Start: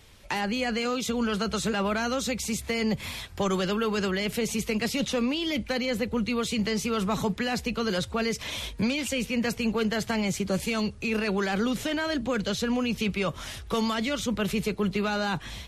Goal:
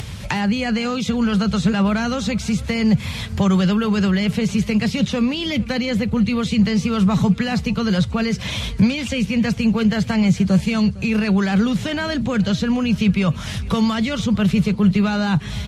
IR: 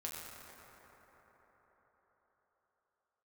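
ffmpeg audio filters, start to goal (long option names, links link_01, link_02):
-filter_complex "[0:a]highpass=70,acrossover=split=5500[link_01][link_02];[link_02]acompressor=threshold=-45dB:ratio=4:attack=1:release=60[link_03];[link_01][link_03]amix=inputs=2:normalize=0,lowpass=11000,lowshelf=frequency=230:width_type=q:width=1.5:gain=10,acompressor=mode=upward:threshold=-23dB:ratio=2.5,asplit=2[link_04][link_05];[link_05]aecho=0:1:456|912|1368|1824:0.0891|0.0455|0.0232|0.0118[link_06];[link_04][link_06]amix=inputs=2:normalize=0,volume=4.5dB"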